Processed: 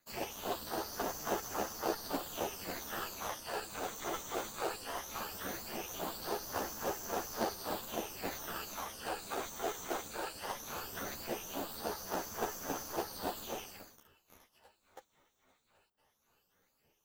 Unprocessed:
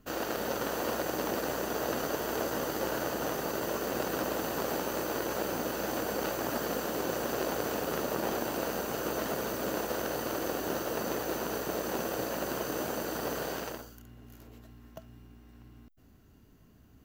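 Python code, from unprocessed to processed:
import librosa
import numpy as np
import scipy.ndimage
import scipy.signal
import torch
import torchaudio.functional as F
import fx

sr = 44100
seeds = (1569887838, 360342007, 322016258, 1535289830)

p1 = fx.phaser_stages(x, sr, stages=12, low_hz=270.0, high_hz=3400.0, hz=0.18, feedback_pct=25)
p2 = fx.filter_lfo_highpass(p1, sr, shape='sine', hz=3.6, low_hz=540.0, high_hz=5400.0, q=0.99)
p3 = fx.sample_hold(p2, sr, seeds[0], rate_hz=2200.0, jitter_pct=20)
p4 = p2 + (p3 * librosa.db_to_amplitude(-4.0))
p5 = p4 * np.sin(2.0 * np.pi * 150.0 * np.arange(len(p4)) / sr)
p6 = fx.ensemble(p5, sr)
y = p6 * librosa.db_to_amplitude(4.5)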